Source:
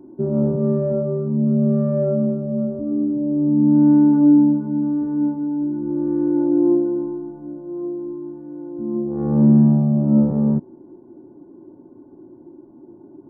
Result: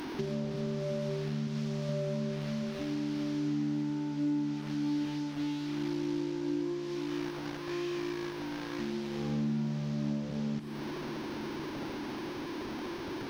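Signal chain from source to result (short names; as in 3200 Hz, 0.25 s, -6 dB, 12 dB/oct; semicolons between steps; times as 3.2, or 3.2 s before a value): delta modulation 32 kbps, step -26.5 dBFS; 1.47–1.89 bell 250 Hz -6.5 dB 2.2 oct; compressor 6:1, threshold -27 dBFS, peak gain reduction 16 dB; crossover distortion -44.5 dBFS; diffused feedback echo 0.606 s, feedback 68%, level -12.5 dB; gain -4 dB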